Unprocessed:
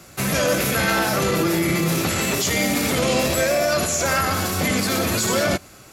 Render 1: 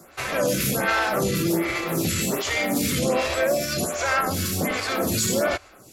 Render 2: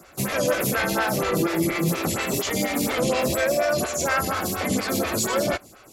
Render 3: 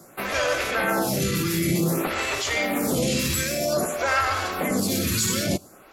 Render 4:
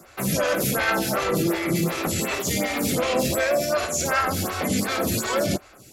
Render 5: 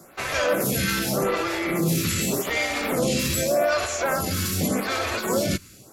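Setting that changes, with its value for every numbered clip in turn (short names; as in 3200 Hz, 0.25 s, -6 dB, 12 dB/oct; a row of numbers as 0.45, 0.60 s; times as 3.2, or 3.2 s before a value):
photocell phaser, rate: 1.3, 4.2, 0.53, 2.7, 0.85 Hz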